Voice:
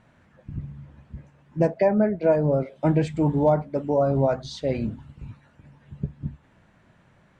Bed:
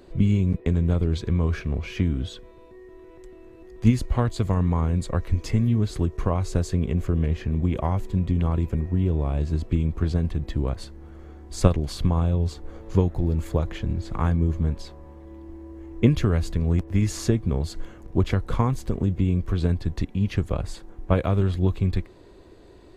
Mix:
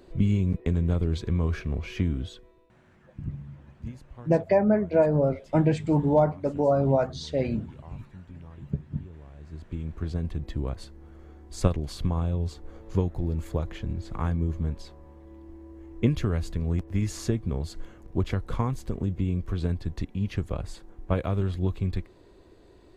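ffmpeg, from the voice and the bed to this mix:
-filter_complex "[0:a]adelay=2700,volume=-1dB[a];[1:a]volume=14.5dB,afade=t=out:st=2.12:d=0.66:silence=0.105925,afade=t=in:st=9.37:d=0.98:silence=0.133352[b];[a][b]amix=inputs=2:normalize=0"

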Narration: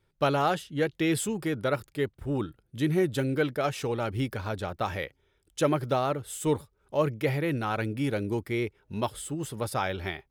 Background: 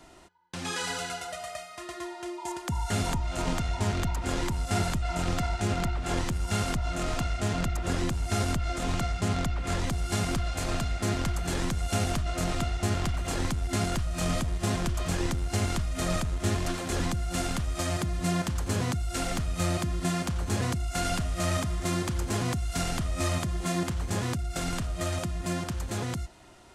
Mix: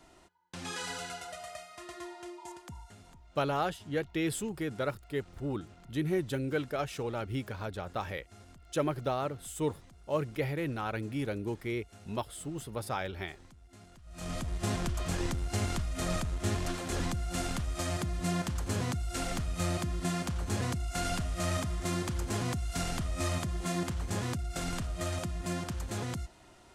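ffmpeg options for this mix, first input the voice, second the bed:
-filter_complex "[0:a]adelay=3150,volume=-5.5dB[a];[1:a]volume=17dB,afade=t=out:st=2.11:d=0.84:silence=0.0891251,afade=t=in:st=14.02:d=0.58:silence=0.0707946[b];[a][b]amix=inputs=2:normalize=0"

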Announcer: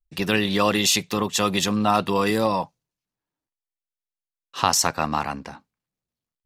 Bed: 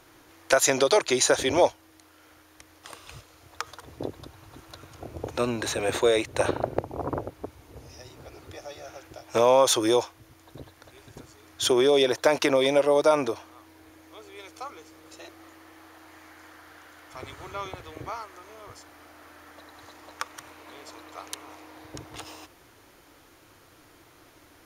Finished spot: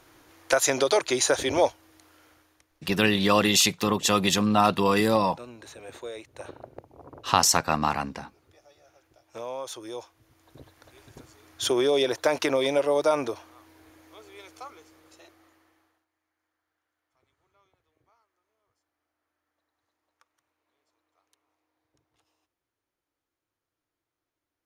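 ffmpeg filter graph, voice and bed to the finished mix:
-filter_complex "[0:a]adelay=2700,volume=-0.5dB[a];[1:a]volume=12.5dB,afade=t=out:st=2.16:d=0.51:silence=0.177828,afade=t=in:st=9.91:d=1.07:silence=0.199526,afade=t=out:st=14.39:d=1.67:silence=0.0316228[b];[a][b]amix=inputs=2:normalize=0"

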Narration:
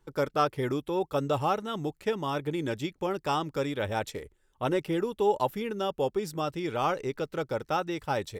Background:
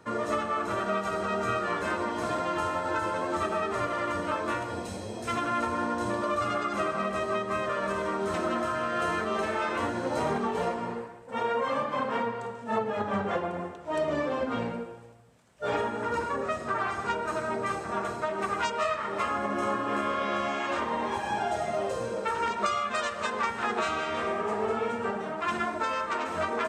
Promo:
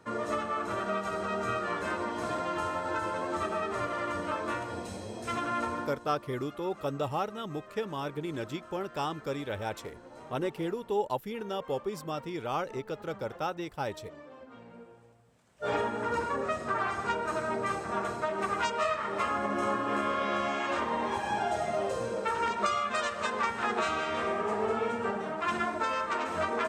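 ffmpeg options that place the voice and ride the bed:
-filter_complex "[0:a]adelay=5700,volume=-4.5dB[a];[1:a]volume=16dB,afade=t=out:st=5.69:d=0.31:silence=0.141254,afade=t=in:st=14.65:d=1.12:silence=0.112202[b];[a][b]amix=inputs=2:normalize=0"

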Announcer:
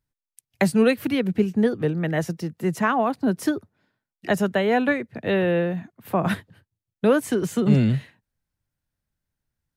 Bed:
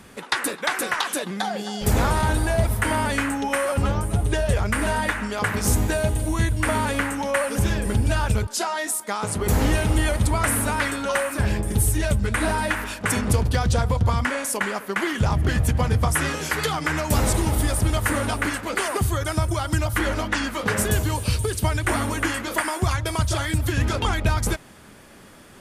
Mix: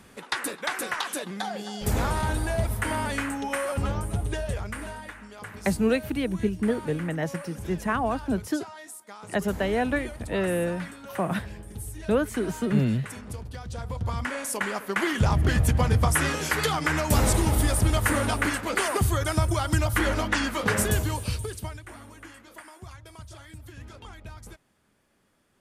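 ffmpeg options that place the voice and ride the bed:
-filter_complex "[0:a]adelay=5050,volume=-5dB[a];[1:a]volume=10.5dB,afade=t=out:st=4.08:d=0.94:silence=0.266073,afade=t=in:st=13.68:d=1.41:silence=0.158489,afade=t=out:st=20.7:d=1.16:silence=0.0944061[b];[a][b]amix=inputs=2:normalize=0"

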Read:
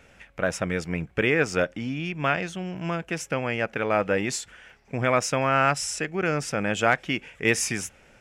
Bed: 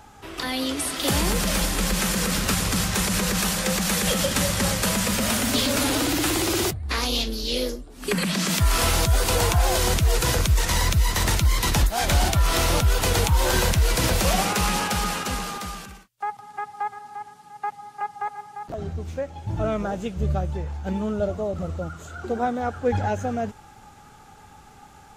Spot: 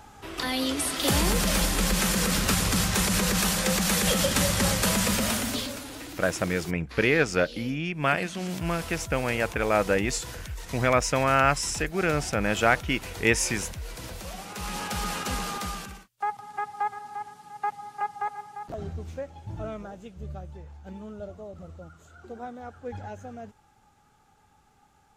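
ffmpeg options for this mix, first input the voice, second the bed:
-filter_complex "[0:a]adelay=5800,volume=0dB[a];[1:a]volume=16.5dB,afade=t=out:st=5.1:d=0.72:silence=0.149624,afade=t=in:st=14.47:d=1.2:silence=0.133352,afade=t=out:st=17.9:d=2.05:silence=0.199526[b];[a][b]amix=inputs=2:normalize=0"

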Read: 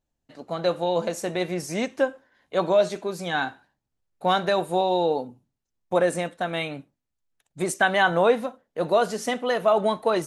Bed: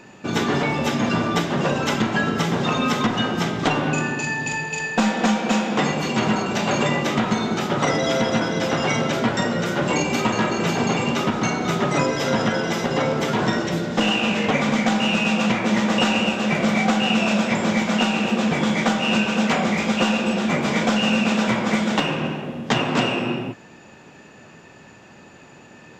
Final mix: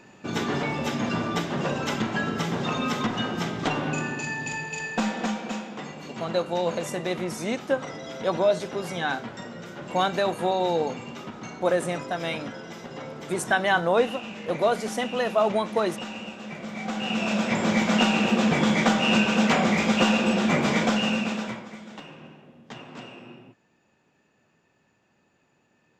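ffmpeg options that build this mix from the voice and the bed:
-filter_complex "[0:a]adelay=5700,volume=-2dB[a];[1:a]volume=9.5dB,afade=t=out:st=4.93:d=0.86:silence=0.298538,afade=t=in:st=16.72:d=1.2:silence=0.16788,afade=t=out:st=20.63:d=1.06:silence=0.1[b];[a][b]amix=inputs=2:normalize=0"

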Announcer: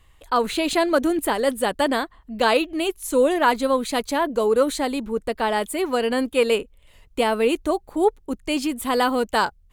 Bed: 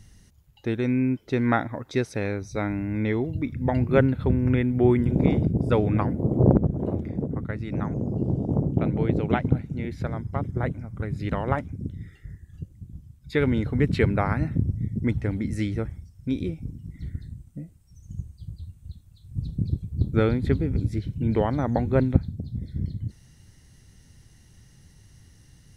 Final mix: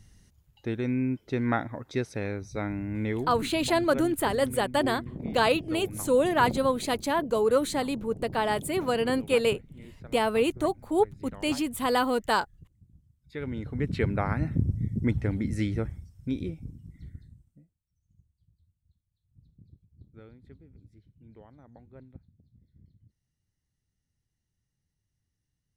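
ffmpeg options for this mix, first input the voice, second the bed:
-filter_complex "[0:a]adelay=2950,volume=-4.5dB[a];[1:a]volume=10.5dB,afade=t=out:st=3.08:d=0.68:silence=0.251189,afade=t=in:st=13.26:d=1.42:silence=0.177828,afade=t=out:st=15.84:d=1.9:silence=0.0421697[b];[a][b]amix=inputs=2:normalize=0"

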